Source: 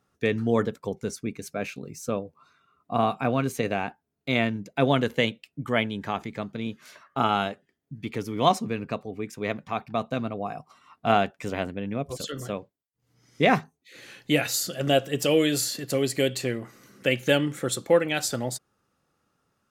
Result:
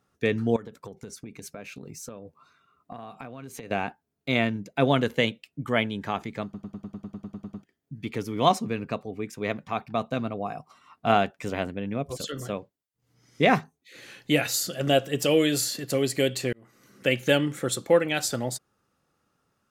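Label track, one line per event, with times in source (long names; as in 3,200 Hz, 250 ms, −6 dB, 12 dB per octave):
0.560000	3.710000	downward compressor 20 to 1, threshold −35 dBFS
6.440000	6.440000	stutter in place 0.10 s, 12 plays
16.530000	17.060000	fade in linear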